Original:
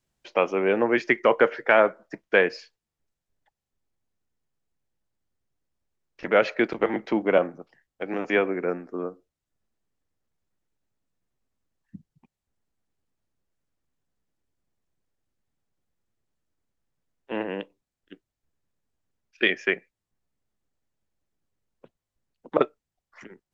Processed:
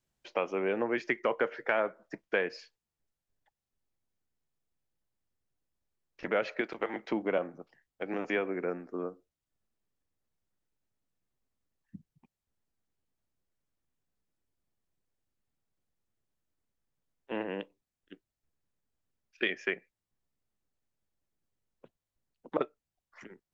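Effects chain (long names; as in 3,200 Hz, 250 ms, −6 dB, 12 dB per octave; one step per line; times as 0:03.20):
0:06.61–0:07.09: low-shelf EQ 370 Hz −10 dB
downward compressor 2 to 1, threshold −25 dBFS, peak gain reduction 7 dB
level −4.5 dB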